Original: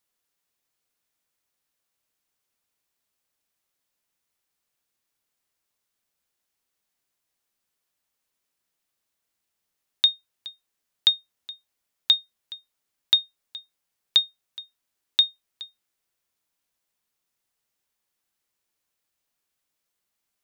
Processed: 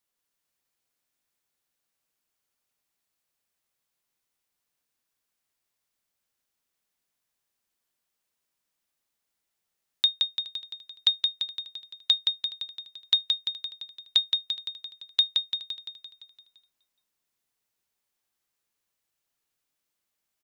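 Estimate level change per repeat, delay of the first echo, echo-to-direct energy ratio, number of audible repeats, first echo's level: -5.0 dB, 171 ms, -2.5 dB, 7, -4.0 dB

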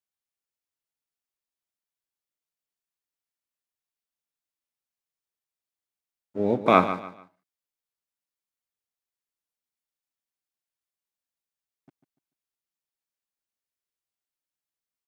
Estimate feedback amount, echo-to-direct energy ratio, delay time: 29%, -11.5 dB, 146 ms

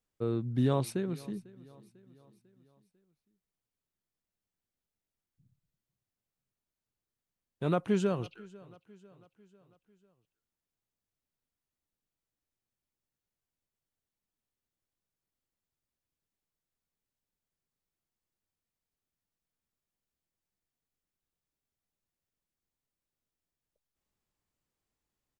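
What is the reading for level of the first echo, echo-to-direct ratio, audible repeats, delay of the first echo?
-22.0 dB, -20.5 dB, 3, 497 ms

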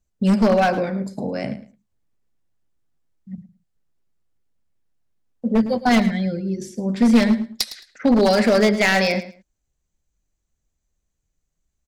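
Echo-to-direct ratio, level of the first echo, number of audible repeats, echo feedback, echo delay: -15.0 dB, -15.0 dB, 2, 18%, 109 ms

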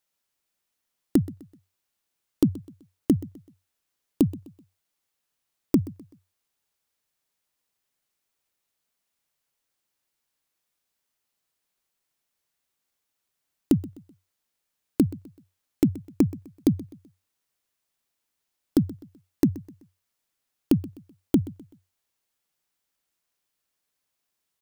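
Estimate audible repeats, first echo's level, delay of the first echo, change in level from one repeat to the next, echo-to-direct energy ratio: 2, -19.0 dB, 127 ms, -8.5 dB, -18.5 dB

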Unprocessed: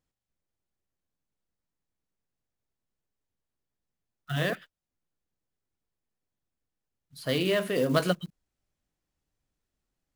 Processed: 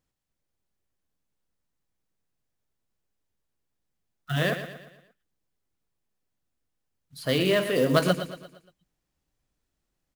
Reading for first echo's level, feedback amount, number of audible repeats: -10.5 dB, 47%, 4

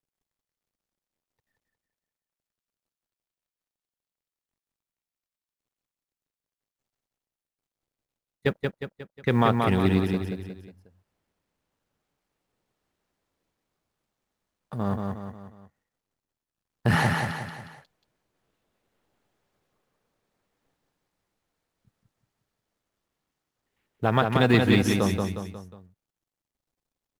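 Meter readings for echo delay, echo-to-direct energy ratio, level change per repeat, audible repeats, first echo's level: 180 ms, -3.0 dB, -6.5 dB, 4, -4.0 dB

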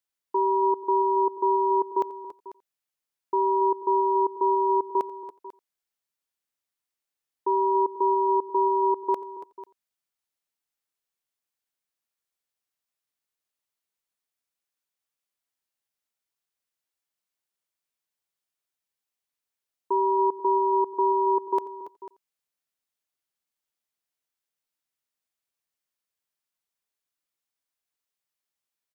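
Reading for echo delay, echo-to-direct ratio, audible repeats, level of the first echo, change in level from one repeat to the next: 87 ms, -12.0 dB, 3, -21.5 dB, no regular repeats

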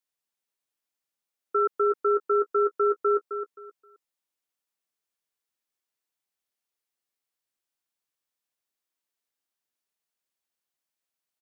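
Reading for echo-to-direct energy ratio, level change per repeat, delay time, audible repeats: -8.5 dB, -12.5 dB, 263 ms, 3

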